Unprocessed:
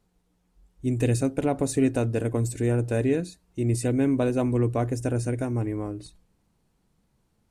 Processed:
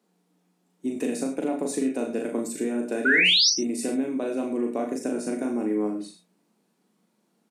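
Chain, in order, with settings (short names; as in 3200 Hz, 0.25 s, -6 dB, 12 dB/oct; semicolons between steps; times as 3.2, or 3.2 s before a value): steep high-pass 190 Hz 48 dB/oct; low shelf 260 Hz +6 dB; compressor 5:1, threshold -25 dBFS, peak gain reduction 9.5 dB; painted sound rise, 3.05–3.5, 1400–6200 Hz -21 dBFS; doubler 38 ms -4 dB; non-linear reverb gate 0.12 s flat, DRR 6.5 dB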